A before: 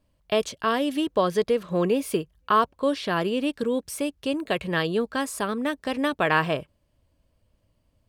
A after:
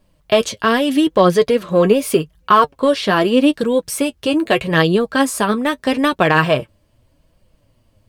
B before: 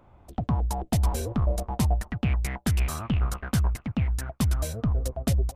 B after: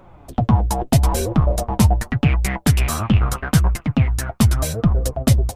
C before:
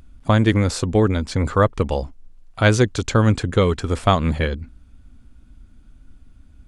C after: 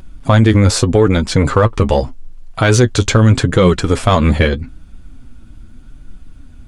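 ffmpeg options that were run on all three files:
-filter_complex "[0:a]asplit=2[s0][s1];[s1]asoftclip=type=tanh:threshold=0.133,volume=0.398[s2];[s0][s2]amix=inputs=2:normalize=0,flanger=delay=5.2:depth=4.8:regen=38:speed=0.81:shape=triangular,alimiter=level_in=4.22:limit=0.891:release=50:level=0:latency=1,volume=0.891"

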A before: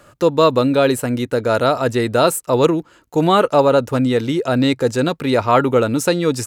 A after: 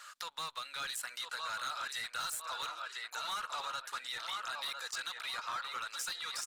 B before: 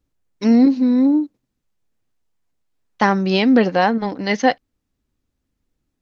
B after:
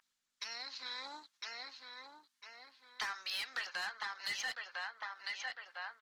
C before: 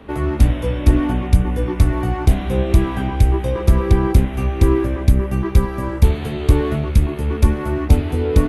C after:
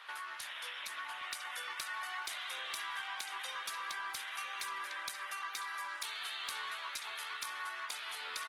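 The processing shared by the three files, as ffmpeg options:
-filter_complex "[0:a]dynaudnorm=f=280:g=11:m=2,aemphasis=mode=reproduction:type=75fm,aexciter=amount=4.3:drive=3.7:freq=3500,aeval=exprs='val(0)+0.0224*(sin(2*PI*50*n/s)+sin(2*PI*2*50*n/s)/2+sin(2*PI*3*50*n/s)/3+sin(2*PI*4*50*n/s)/4+sin(2*PI*5*50*n/s)/5)':c=same,highpass=f=1300:w=0.5412,highpass=f=1300:w=1.3066,asplit=2[s0][s1];[s1]adelay=1002,lowpass=f=2900:p=1,volume=0.398,asplit=2[s2][s3];[s3]adelay=1002,lowpass=f=2900:p=1,volume=0.43,asplit=2[s4][s5];[s5]adelay=1002,lowpass=f=2900:p=1,volume=0.43,asplit=2[s6][s7];[s7]adelay=1002,lowpass=f=2900:p=1,volume=0.43,asplit=2[s8][s9];[s9]adelay=1002,lowpass=f=2900:p=1,volume=0.43[s10];[s0][s2][s4][s6][s8][s10]amix=inputs=6:normalize=0,asoftclip=type=tanh:threshold=0.0596,highshelf=f=8300:g=-4.5,acompressor=threshold=0.00631:ratio=4,volume=1.58" -ar 48000 -c:a libopus -b:a 16k

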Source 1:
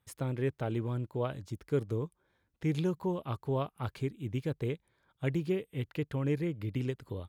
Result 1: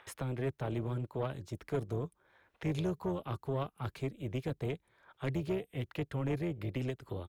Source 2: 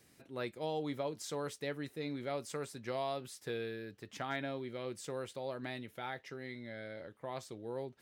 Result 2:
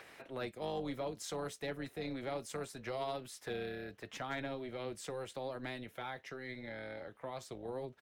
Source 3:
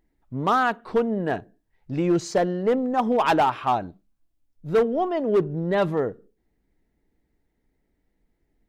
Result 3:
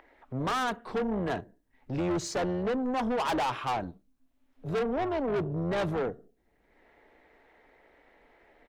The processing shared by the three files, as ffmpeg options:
-filter_complex "[0:a]bandreject=f=4700:w=29,tremolo=f=260:d=0.571,acrossover=split=270|450|3200[s0][s1][s2][s3];[s2]acompressor=mode=upward:threshold=0.00708:ratio=2.5[s4];[s3]aecho=1:1:4.2:0.49[s5];[s0][s1][s4][s5]amix=inputs=4:normalize=0,asoftclip=type=tanh:threshold=0.0422,volume=1.19"

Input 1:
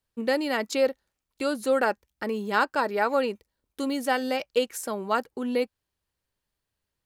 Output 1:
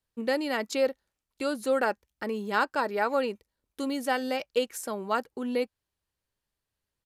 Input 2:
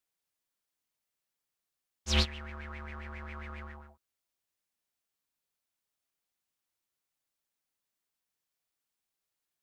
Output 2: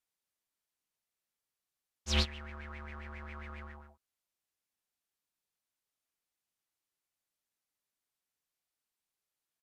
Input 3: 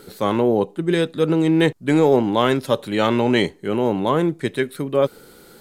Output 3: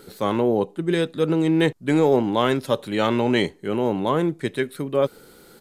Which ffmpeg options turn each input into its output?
-af "aresample=32000,aresample=44100,volume=0.75"

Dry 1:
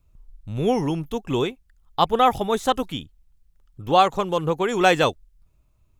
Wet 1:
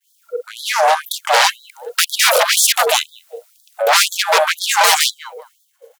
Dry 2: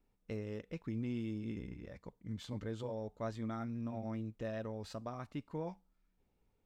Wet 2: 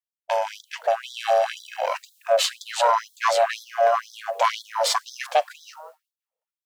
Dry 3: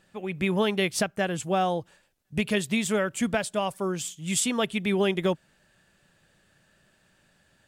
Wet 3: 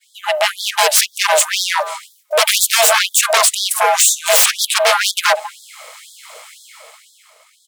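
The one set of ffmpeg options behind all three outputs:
-filter_complex "[0:a]acrossover=split=340|2200[s0][s1][s2];[s1]alimiter=limit=0.178:level=0:latency=1:release=150[s3];[s0][s3][s2]amix=inputs=3:normalize=0,highshelf=f=4900:g=7.5,dynaudnorm=f=130:g=17:m=2.24,asplit=2[s4][s5];[s5]adelay=195,lowpass=f=1100:p=1,volume=0.0631,asplit=2[s6][s7];[s7]adelay=195,lowpass=f=1100:p=1,volume=0.21[s8];[s6][s8]amix=inputs=2:normalize=0[s9];[s4][s9]amix=inputs=2:normalize=0,aeval=exprs='0.841*sin(PI/2*7.94*val(0)/0.841)':c=same,agate=range=0.0224:threshold=0.02:ratio=3:detection=peak,lowshelf=f=230:g=4.5,aeval=exprs='val(0)*sin(2*PI*460*n/s)':c=same,acontrast=45,afftfilt=real='re*gte(b*sr/1024,430*pow(3300/430,0.5+0.5*sin(2*PI*2*pts/sr)))':imag='im*gte(b*sr/1024,430*pow(3300/430,0.5+0.5*sin(2*PI*2*pts/sr)))':win_size=1024:overlap=0.75,volume=0.562"

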